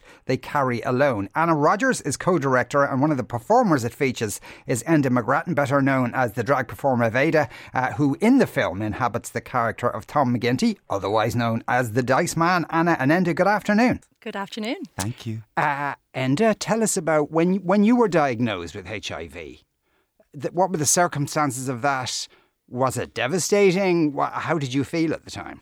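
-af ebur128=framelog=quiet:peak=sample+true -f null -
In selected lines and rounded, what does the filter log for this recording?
Integrated loudness:
  I:         -22.0 LUFS
  Threshold: -32.3 LUFS
Loudness range:
  LRA:         3.2 LU
  Threshold: -42.3 LUFS
  LRA low:   -24.2 LUFS
  LRA high:  -21.0 LUFS
Sample peak:
  Peak:       -7.6 dBFS
True peak:
  Peak:       -7.5 dBFS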